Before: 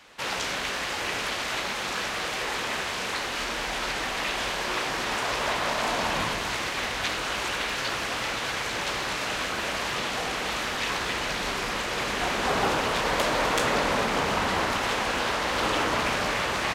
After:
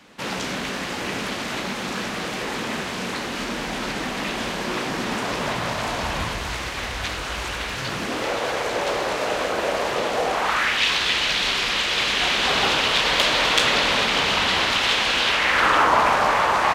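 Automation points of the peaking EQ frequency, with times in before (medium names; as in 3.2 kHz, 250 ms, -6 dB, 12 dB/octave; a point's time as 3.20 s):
peaking EQ +13 dB 1.6 oct
5.37 s 210 Hz
6.07 s 62 Hz
7.62 s 62 Hz
8.32 s 530 Hz
10.25 s 530 Hz
10.85 s 3.4 kHz
15.24 s 3.4 kHz
15.92 s 940 Hz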